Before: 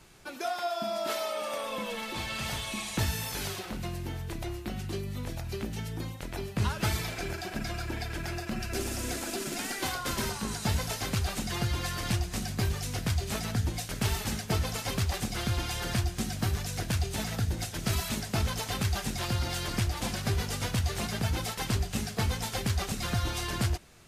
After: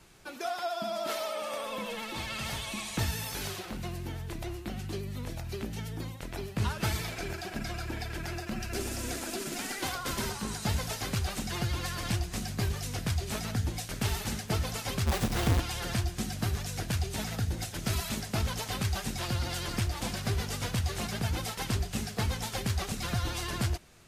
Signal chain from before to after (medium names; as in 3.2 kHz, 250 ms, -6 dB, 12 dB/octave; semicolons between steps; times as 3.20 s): 15.06–15.60 s: square wave that keeps the level; vibrato 13 Hz 50 cents; trim -1.5 dB